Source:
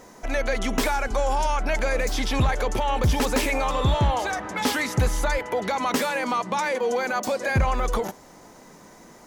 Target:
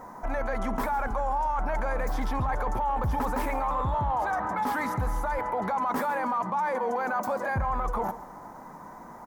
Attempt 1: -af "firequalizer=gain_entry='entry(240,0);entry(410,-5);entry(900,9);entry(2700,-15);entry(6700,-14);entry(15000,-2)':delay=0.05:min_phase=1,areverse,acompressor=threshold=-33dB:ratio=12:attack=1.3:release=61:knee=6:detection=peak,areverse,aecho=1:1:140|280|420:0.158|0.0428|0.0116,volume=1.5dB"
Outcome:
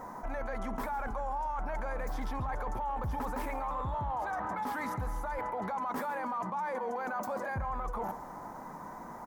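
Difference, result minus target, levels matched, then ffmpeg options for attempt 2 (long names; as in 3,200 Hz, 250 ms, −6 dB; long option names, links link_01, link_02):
downward compressor: peak gain reduction +7.5 dB
-af "firequalizer=gain_entry='entry(240,0);entry(410,-5);entry(900,9);entry(2700,-15);entry(6700,-14);entry(15000,-2)':delay=0.05:min_phase=1,areverse,acompressor=threshold=-25dB:ratio=12:attack=1.3:release=61:knee=6:detection=peak,areverse,aecho=1:1:140|280|420:0.158|0.0428|0.0116,volume=1.5dB"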